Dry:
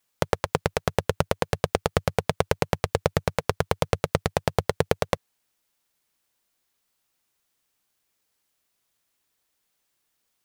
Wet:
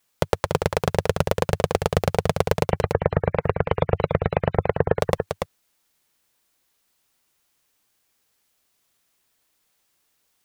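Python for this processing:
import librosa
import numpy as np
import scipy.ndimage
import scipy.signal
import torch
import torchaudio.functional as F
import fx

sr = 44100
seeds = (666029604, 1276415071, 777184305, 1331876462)

y = fx.spec_gate(x, sr, threshold_db=-20, keep='strong', at=(2.64, 4.99), fade=0.02)
y = 10.0 ** (-7.5 / 20.0) * np.tanh(y / 10.0 ** (-7.5 / 20.0))
y = y + 10.0 ** (-5.5 / 20.0) * np.pad(y, (int(287 * sr / 1000.0), 0))[:len(y)]
y = F.gain(torch.from_numpy(y), 4.5).numpy()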